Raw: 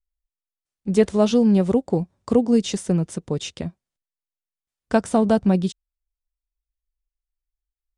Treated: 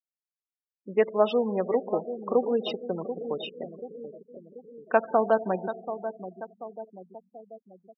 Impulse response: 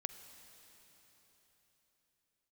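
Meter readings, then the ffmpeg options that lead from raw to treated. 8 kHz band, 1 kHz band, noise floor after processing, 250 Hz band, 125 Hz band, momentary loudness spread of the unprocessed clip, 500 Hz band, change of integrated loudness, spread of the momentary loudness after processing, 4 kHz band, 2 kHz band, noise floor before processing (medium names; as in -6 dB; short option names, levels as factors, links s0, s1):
under -35 dB, +0.5 dB, under -85 dBFS, -14.0 dB, -17.5 dB, 12 LU, -2.5 dB, -7.0 dB, 20 LU, -6.0 dB, -0.5 dB, under -85 dBFS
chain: -filter_complex "[0:a]asplit=2[s0][s1];[s1]adelay=735,lowpass=f=3800:p=1,volume=0.282,asplit=2[s2][s3];[s3]adelay=735,lowpass=f=3800:p=1,volume=0.51,asplit=2[s4][s5];[s5]adelay=735,lowpass=f=3800:p=1,volume=0.51,asplit=2[s6][s7];[s7]adelay=735,lowpass=f=3800:p=1,volume=0.51,asplit=2[s8][s9];[s9]adelay=735,lowpass=f=3800:p=1,volume=0.51[s10];[s0][s2][s4][s6][s8][s10]amix=inputs=6:normalize=0,asplit=2[s11][s12];[1:a]atrim=start_sample=2205,asetrate=70560,aresample=44100,lowpass=2400[s13];[s12][s13]afir=irnorm=-1:irlink=0,volume=2.37[s14];[s11][s14]amix=inputs=2:normalize=0,afftfilt=real='re*gte(hypot(re,im),0.0562)':imag='im*gte(hypot(re,im),0.0562)':win_size=1024:overlap=0.75,highshelf=f=3800:g=9,aresample=11025,aresample=44100,highpass=560,volume=0.531"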